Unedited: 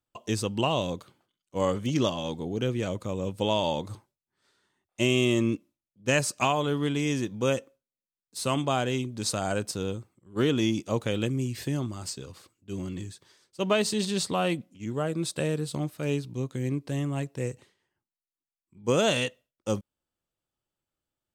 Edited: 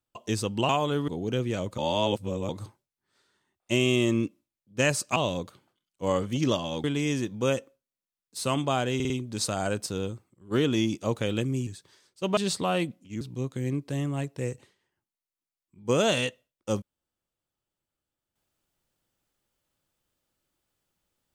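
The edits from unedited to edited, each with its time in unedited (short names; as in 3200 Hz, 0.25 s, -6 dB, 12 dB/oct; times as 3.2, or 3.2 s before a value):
0.69–2.37 swap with 6.45–6.84
3.07–3.78 reverse
8.95 stutter 0.05 s, 4 plays
11.52–13.04 cut
13.74–14.07 cut
14.91–16.2 cut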